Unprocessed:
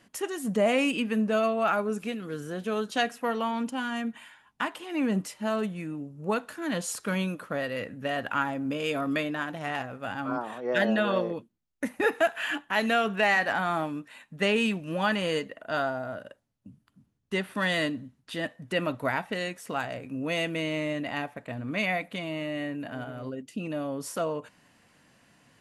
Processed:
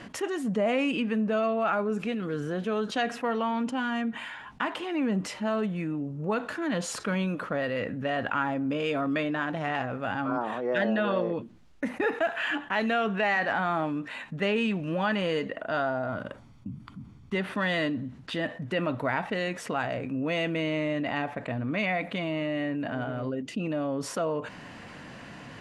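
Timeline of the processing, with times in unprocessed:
0:16.09–0:17.35: comb filter 0.9 ms, depth 49%
whole clip: Bessel low-pass filter 7,400 Hz, order 2; high-shelf EQ 5,400 Hz −12 dB; envelope flattener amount 50%; level −3.5 dB

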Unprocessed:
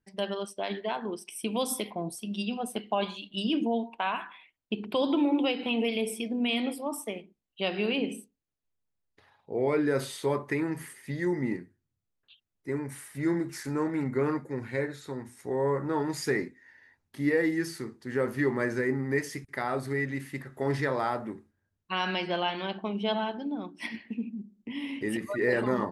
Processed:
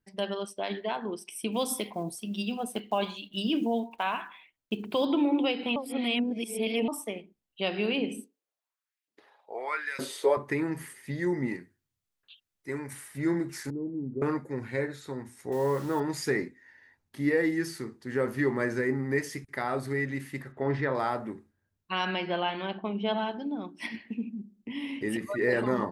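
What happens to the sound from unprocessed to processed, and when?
0:01.52–0:05.07: one scale factor per block 7 bits
0:05.76–0:06.88: reverse
0:08.17–0:10.37: auto-filter high-pass saw up 1.1 Hz 230–2,600 Hz
0:11.48–0:12.93: tilt shelving filter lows −4.5 dB, about 880 Hz
0:13.70–0:14.22: transistor ladder low-pass 470 Hz, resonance 25%
0:15.52–0:16.00: bit-depth reduction 8 bits, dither none
0:20.52–0:20.95: low-pass filter 2,900 Hz
0:22.05–0:23.18: low-pass filter 3,400 Hz

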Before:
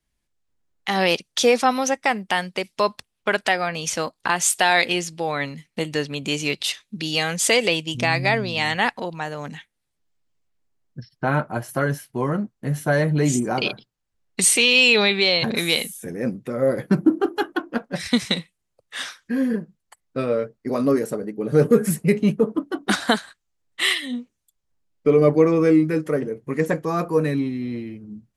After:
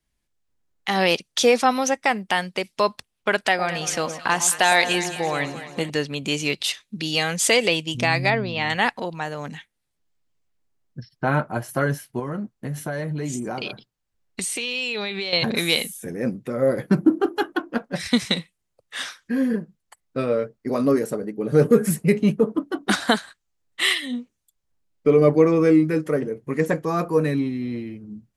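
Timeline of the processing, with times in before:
0:03.46–0:05.90: delay that swaps between a low-pass and a high-pass 110 ms, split 1,100 Hz, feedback 72%, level −9.5 dB
0:08.30–0:08.70: high-frequency loss of the air 190 metres
0:12.19–0:15.33: downward compressor 5 to 1, threshold −25 dBFS

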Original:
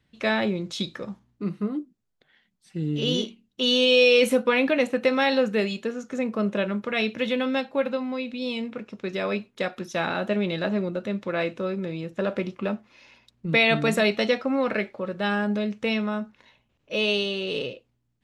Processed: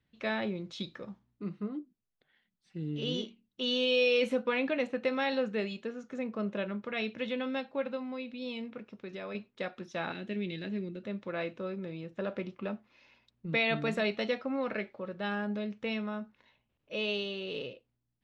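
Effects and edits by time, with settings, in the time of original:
0:08.85–0:09.35: downward compressor 2 to 1, threshold −31 dBFS
0:10.12–0:11.04: flat-topped bell 880 Hz −13.5 dB
whole clip: low-pass filter 4,900 Hz 12 dB per octave; level −9 dB

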